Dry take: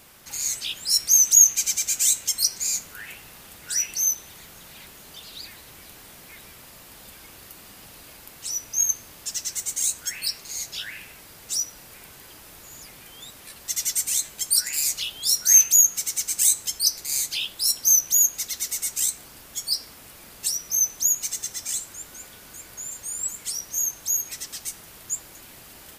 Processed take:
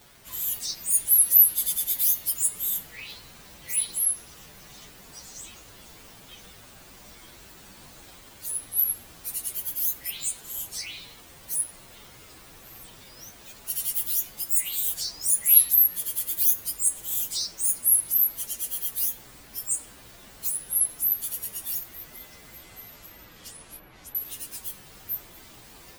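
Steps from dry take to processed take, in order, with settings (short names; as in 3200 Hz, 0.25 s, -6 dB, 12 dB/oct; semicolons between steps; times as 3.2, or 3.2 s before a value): inharmonic rescaling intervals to 118%; 22.55–24.15 treble ducked by the level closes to 2300 Hz, closed at -27 dBFS; gain +3.5 dB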